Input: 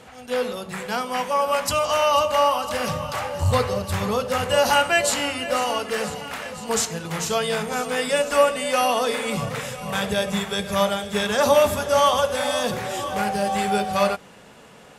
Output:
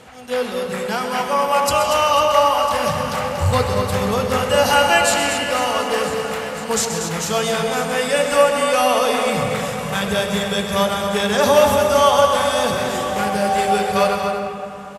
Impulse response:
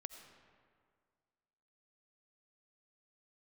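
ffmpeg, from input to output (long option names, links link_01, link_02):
-filter_complex "[0:a]aecho=1:1:128.3|236.2:0.282|0.398[link_01];[1:a]atrim=start_sample=2205,asetrate=28665,aresample=44100[link_02];[link_01][link_02]afir=irnorm=-1:irlink=0,volume=5.5dB"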